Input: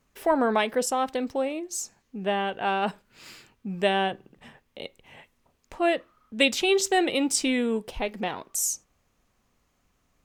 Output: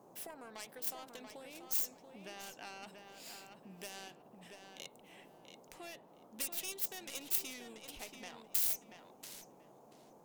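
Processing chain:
stylus tracing distortion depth 0.49 ms
downward compressor 10 to 1, threshold −31 dBFS, peak gain reduction 15.5 dB
first-order pre-emphasis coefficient 0.9
on a send: feedback echo with a low-pass in the loop 684 ms, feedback 21%, low-pass 3,900 Hz, level −6 dB
on the sum: noise in a band 140–860 Hz −61 dBFS

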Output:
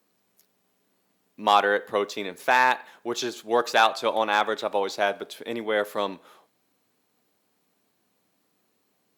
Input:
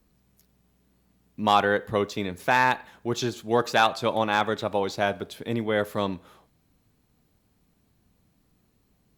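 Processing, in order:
high-pass filter 360 Hz 12 dB per octave
level +1.5 dB

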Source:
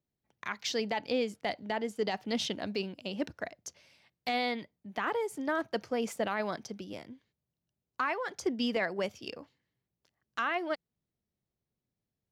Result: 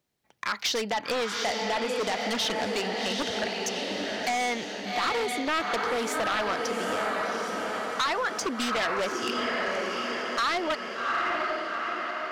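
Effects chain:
dynamic equaliser 1,300 Hz, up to +7 dB, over −53 dBFS, Q 6.3
feedback delay with all-pass diffusion 781 ms, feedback 54%, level −6 dB
wave folding −26.5 dBFS
downward compressor, threshold −34 dBFS, peak gain reduction 5 dB
mid-hump overdrive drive 11 dB, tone 7,900 Hz, clips at −26.5 dBFS
level +7.5 dB

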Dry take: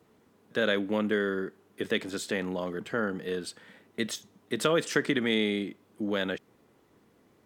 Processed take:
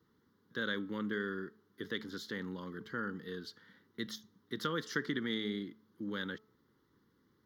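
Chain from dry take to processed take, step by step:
phaser with its sweep stopped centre 2,500 Hz, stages 6
hum removal 216.7 Hz, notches 6
level −6 dB

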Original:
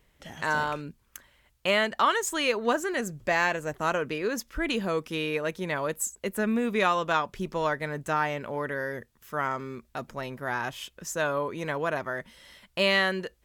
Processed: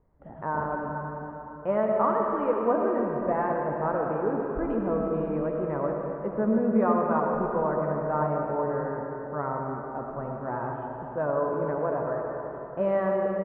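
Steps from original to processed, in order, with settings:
low-pass filter 1,100 Hz 24 dB per octave
double-tracking delay 14 ms −11 dB
convolution reverb RT60 3.6 s, pre-delay 40 ms, DRR 0 dB

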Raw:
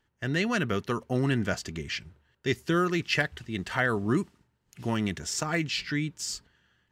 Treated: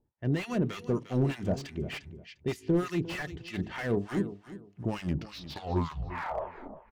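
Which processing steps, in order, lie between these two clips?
turntable brake at the end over 2.13 s
low-pass that shuts in the quiet parts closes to 920 Hz, open at −23 dBFS
parametric band 1,400 Hz −9 dB 0.95 octaves
hum removal 53.94 Hz, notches 9
hard clipping −22.5 dBFS, distortion −17 dB
two-band tremolo in antiphase 3.3 Hz, depth 100%, crossover 950 Hz
repeating echo 351 ms, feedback 23%, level −15 dB
slew-rate limiting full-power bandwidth 23 Hz
level +4 dB

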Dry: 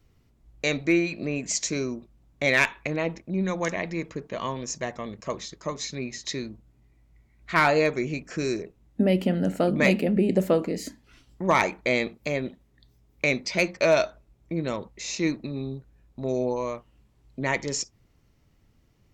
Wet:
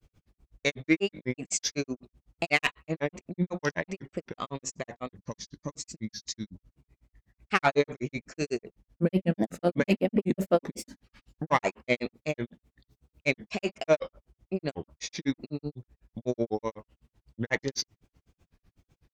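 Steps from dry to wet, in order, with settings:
gain on a spectral selection 0:05.17–0:06.54, 330–4,300 Hz −9 dB
harmonic generator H 5 −27 dB, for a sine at −7.5 dBFS
granular cloud 93 ms, grains 8 per second, spray 15 ms, pitch spread up and down by 3 semitones

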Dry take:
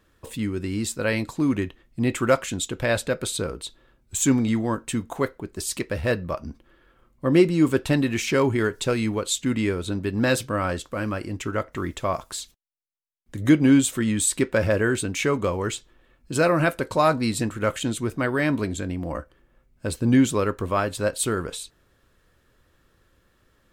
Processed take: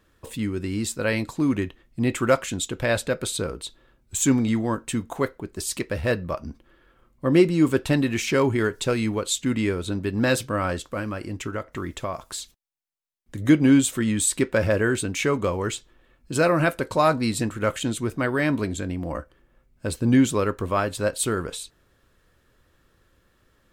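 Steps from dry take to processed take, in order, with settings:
0:10.99–0:13.49: downward compressor 3 to 1, threshold −27 dBFS, peak gain reduction 6 dB

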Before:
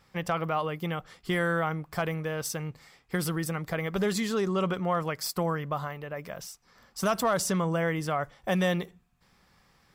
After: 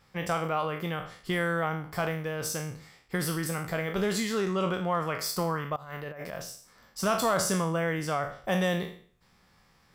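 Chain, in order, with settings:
peak hold with a decay on every bin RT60 0.49 s
0:05.76–0:06.42: compressor whose output falls as the input rises −37 dBFS, ratio −0.5
level −1.5 dB

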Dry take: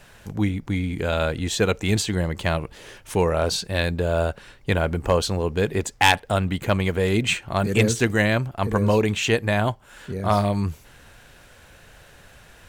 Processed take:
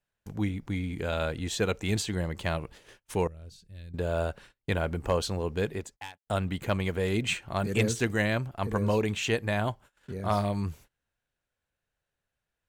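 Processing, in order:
0:05.65–0:06.27: fade out quadratic
noise gate −41 dBFS, range −30 dB
0:03.27–0:03.94: guitar amp tone stack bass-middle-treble 10-0-1
level −7 dB

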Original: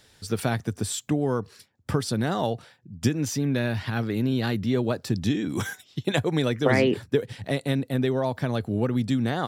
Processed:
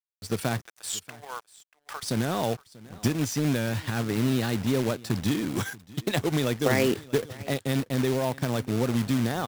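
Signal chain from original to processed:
0:00.66–0:02.03: high-pass filter 770 Hz 24 dB per octave
in parallel at 0 dB: brickwall limiter −17 dBFS, peak gain reduction 8 dB
on the sum: dead-zone distortion −38 dBFS
log-companded quantiser 4 bits
on a send: single-tap delay 635 ms −21 dB
on the sum: wow of a warped record 45 rpm, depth 100 cents
level −6 dB

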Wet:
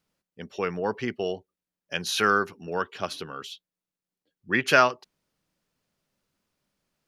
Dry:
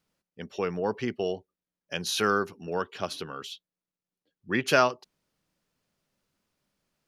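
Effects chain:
dynamic equaliser 1,800 Hz, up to +6 dB, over −40 dBFS, Q 0.91

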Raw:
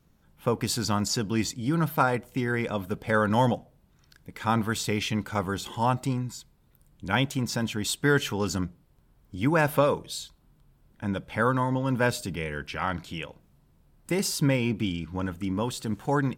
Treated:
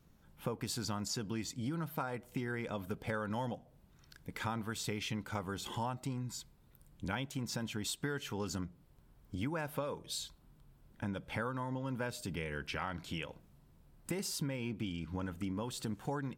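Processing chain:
downward compressor 6 to 1, threshold −34 dBFS, peak gain reduction 16 dB
level −1.5 dB

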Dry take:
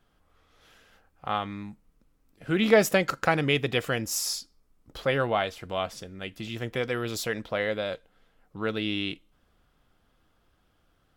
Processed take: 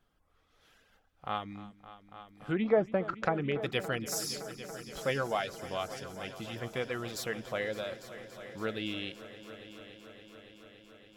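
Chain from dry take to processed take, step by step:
0:01.57–0:03.62: treble cut that deepens with the level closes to 1,000 Hz, closed at −18.5 dBFS
reverb reduction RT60 0.65 s
echo machine with several playback heads 283 ms, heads all three, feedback 69%, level −18.5 dB
level −5.5 dB

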